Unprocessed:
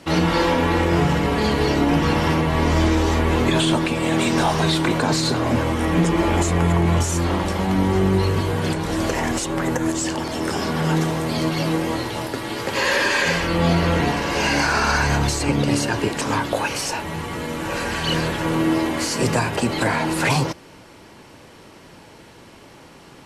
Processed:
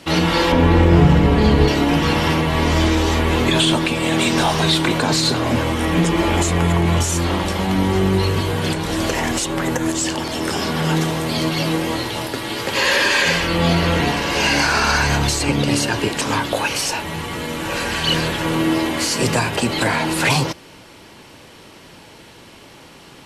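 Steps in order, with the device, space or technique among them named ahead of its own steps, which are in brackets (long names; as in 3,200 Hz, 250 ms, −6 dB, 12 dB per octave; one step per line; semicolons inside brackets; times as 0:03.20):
presence and air boost (parametric band 3,300 Hz +5 dB 1.2 octaves; high-shelf EQ 9,700 Hz +6.5 dB)
0:00.52–0:01.68: spectral tilt −2.5 dB per octave
level +1 dB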